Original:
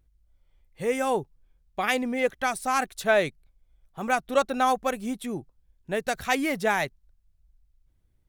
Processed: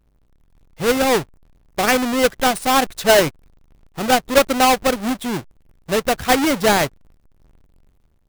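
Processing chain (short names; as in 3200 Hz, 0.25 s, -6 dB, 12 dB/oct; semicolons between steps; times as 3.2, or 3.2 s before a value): half-waves squared off; AGC gain up to 4.5 dB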